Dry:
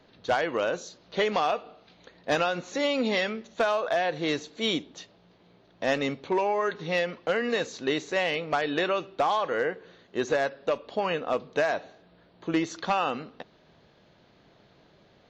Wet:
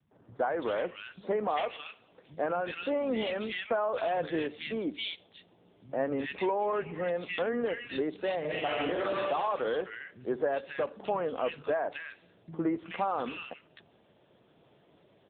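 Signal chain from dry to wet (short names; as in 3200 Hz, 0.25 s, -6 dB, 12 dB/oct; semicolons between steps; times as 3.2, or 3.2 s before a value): 1.61–3.25 low shelf 220 Hz -3 dB; 8.28–9.04 reverb throw, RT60 1.2 s, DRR -2 dB; limiter -20 dBFS, peak gain reduction 8 dB; three bands offset in time lows, mids, highs 0.11/0.37 s, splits 160/1700 Hz; AMR-NB 6.7 kbps 8000 Hz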